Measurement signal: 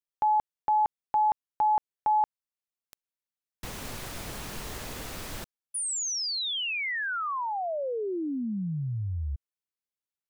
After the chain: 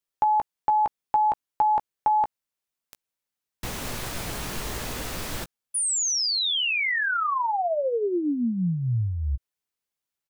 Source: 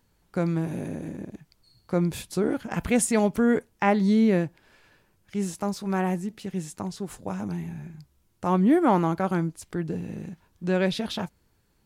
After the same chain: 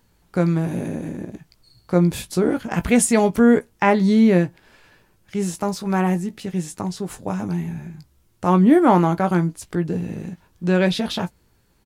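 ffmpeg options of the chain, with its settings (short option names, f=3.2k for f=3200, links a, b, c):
-filter_complex "[0:a]asplit=2[a][b];[b]adelay=17,volume=-10dB[c];[a][c]amix=inputs=2:normalize=0,volume=5.5dB"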